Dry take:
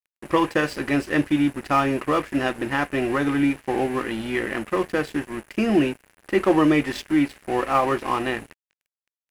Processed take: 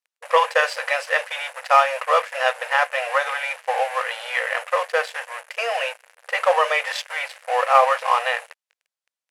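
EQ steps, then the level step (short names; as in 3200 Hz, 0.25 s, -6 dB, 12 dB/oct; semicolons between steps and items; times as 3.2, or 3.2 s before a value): brick-wall FIR high-pass 470 Hz; Bessel low-pass 9800 Hz, order 2; +6.0 dB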